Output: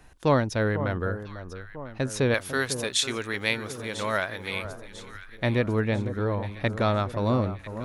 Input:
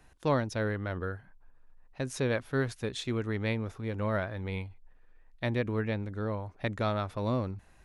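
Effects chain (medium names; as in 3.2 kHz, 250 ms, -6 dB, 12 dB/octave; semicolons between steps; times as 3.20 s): 2.34–4.65 s: tilt EQ +4 dB/octave; echo whose repeats swap between lows and highs 498 ms, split 1.3 kHz, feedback 66%, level -10.5 dB; trim +6 dB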